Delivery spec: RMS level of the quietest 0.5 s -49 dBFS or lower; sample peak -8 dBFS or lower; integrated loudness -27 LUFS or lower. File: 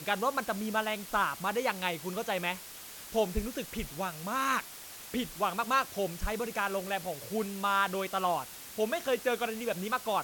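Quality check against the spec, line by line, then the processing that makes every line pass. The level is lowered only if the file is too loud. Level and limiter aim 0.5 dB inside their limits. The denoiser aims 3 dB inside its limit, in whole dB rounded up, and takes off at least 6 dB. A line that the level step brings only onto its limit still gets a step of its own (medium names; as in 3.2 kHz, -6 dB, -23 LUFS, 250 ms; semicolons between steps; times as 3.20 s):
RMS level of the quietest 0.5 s -47 dBFS: fail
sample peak -14.0 dBFS: pass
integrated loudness -32.5 LUFS: pass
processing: noise reduction 6 dB, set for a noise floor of -47 dBFS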